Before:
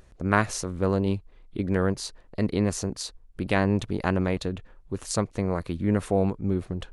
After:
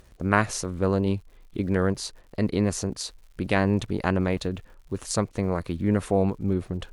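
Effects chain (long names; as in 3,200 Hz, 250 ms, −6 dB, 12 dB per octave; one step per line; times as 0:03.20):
surface crackle 150 per second −48 dBFS
harmonic generator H 2 −22 dB, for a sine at −5.5 dBFS
level +1 dB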